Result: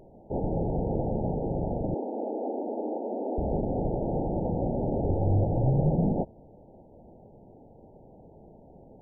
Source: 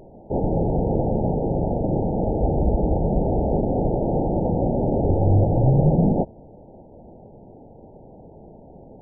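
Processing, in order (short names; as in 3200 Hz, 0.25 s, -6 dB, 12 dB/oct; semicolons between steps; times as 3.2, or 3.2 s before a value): 1.94–3.38 brick-wall FIR high-pass 220 Hz; gain -7 dB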